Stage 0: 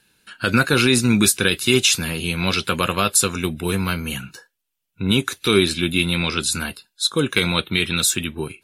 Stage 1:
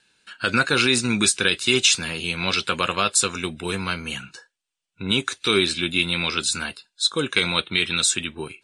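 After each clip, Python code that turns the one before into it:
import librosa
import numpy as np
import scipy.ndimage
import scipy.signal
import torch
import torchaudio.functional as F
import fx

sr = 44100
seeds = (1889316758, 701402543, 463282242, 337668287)

y = scipy.signal.sosfilt(scipy.signal.ellip(4, 1.0, 70, 8800.0, 'lowpass', fs=sr, output='sos'), x)
y = fx.low_shelf(y, sr, hz=310.0, db=-8.5)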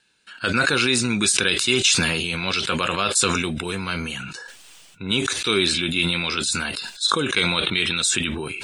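y = fx.sustainer(x, sr, db_per_s=26.0)
y = F.gain(torch.from_numpy(y), -1.5).numpy()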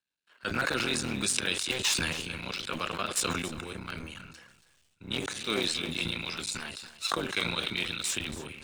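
y = fx.cycle_switch(x, sr, every=3, mode='muted')
y = y + 10.0 ** (-12.0 / 20.0) * np.pad(y, (int(280 * sr / 1000.0), 0))[:len(y)]
y = fx.band_widen(y, sr, depth_pct=40)
y = F.gain(torch.from_numpy(y), -9.0).numpy()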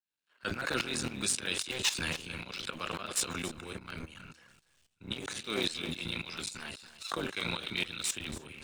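y = fx.tremolo_shape(x, sr, shape='saw_up', hz=3.7, depth_pct=80)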